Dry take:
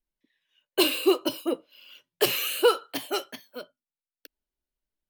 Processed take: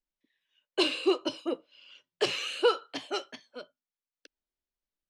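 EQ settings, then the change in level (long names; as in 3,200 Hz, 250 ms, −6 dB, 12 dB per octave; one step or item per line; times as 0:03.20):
low-pass filter 6,900 Hz 24 dB per octave
low-shelf EQ 190 Hz −4 dB
−3.5 dB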